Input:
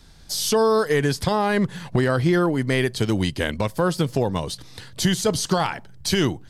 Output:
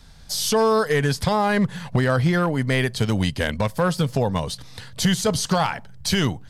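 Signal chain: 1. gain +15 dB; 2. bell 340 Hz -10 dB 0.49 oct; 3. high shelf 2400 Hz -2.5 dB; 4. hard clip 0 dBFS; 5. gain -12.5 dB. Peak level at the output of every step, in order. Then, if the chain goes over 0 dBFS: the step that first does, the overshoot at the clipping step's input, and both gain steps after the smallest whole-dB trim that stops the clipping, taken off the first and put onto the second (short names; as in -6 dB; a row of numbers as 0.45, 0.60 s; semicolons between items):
+5.5, +5.5, +5.0, 0.0, -12.5 dBFS; step 1, 5.0 dB; step 1 +10 dB, step 5 -7.5 dB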